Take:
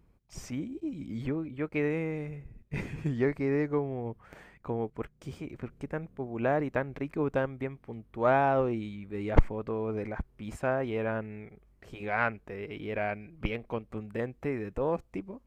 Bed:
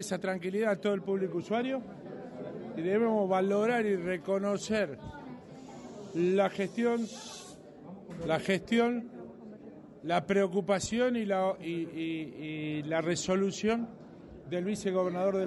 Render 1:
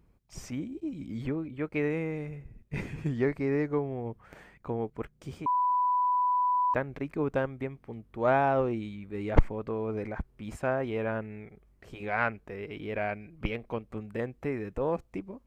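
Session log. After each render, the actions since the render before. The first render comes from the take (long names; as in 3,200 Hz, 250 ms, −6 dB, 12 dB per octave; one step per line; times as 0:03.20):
0:05.46–0:06.74: beep over 993 Hz −23 dBFS
0:07.64–0:08.28: dynamic equaliser 1,400 Hz, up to −4 dB, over −48 dBFS, Q 1.3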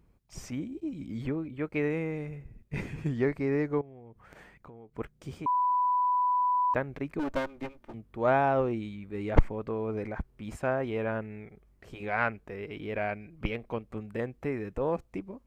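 0:03.81–0:04.94: downward compressor 8 to 1, threshold −46 dBFS
0:07.19–0:07.94: lower of the sound and its delayed copy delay 3.3 ms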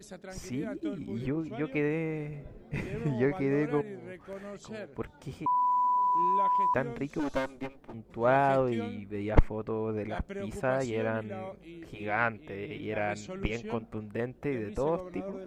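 mix in bed −12 dB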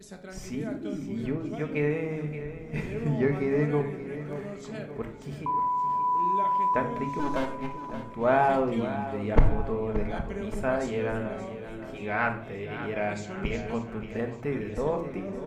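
repeating echo 577 ms, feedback 52%, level −12 dB
rectangular room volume 810 cubic metres, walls furnished, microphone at 1.5 metres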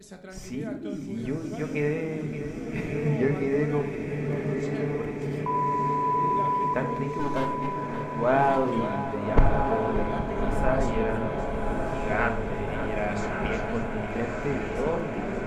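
feedback delay with all-pass diffusion 1,244 ms, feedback 69%, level −4.5 dB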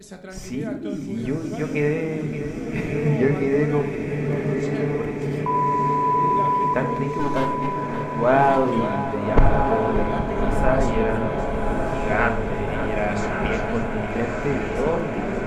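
level +5 dB
brickwall limiter −2 dBFS, peak gain reduction 2.5 dB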